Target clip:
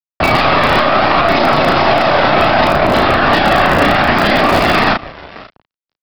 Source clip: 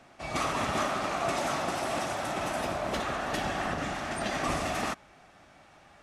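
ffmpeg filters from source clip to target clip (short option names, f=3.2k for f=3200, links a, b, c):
-filter_complex "[0:a]anlmdn=1,asplit=2[a][b];[b]adelay=530,lowpass=f=1.7k:p=1,volume=-22.5dB,asplit=2[c][d];[d]adelay=530,lowpass=f=1.7k:p=1,volume=0.39,asplit=2[e][f];[f]adelay=530,lowpass=f=1.7k:p=1,volume=0.39[g];[a][c][e][g]amix=inputs=4:normalize=0,aeval=exprs='0.141*(cos(1*acos(clip(val(0)/0.141,-1,1)))-cos(1*PI/2))+0.0398*(cos(2*acos(clip(val(0)/0.141,-1,1)))-cos(2*PI/2))+0.0178*(cos(3*acos(clip(val(0)/0.141,-1,1)))-cos(3*PI/2))+0.00355*(cos(5*acos(clip(val(0)/0.141,-1,1)))-cos(5*PI/2))':c=same,aresample=11025,aeval=exprs='sgn(val(0))*max(abs(val(0))-0.00168,0)':c=same,aresample=44100,acompressor=threshold=-37dB:ratio=8,lowshelf=f=77:g=-3,aphaser=in_gain=1:out_gain=1:delay=2.1:decay=0.25:speed=0.67:type=triangular,acrossover=split=190|2800[h][i][j];[h]aeval=exprs='(mod(168*val(0)+1,2)-1)/168':c=same[k];[k][i][j]amix=inputs=3:normalize=0,asplit=2[l][m];[m]adelay=34,volume=-5dB[n];[l][n]amix=inputs=2:normalize=0,alimiter=level_in=35dB:limit=-1dB:release=50:level=0:latency=1,volume=-1dB"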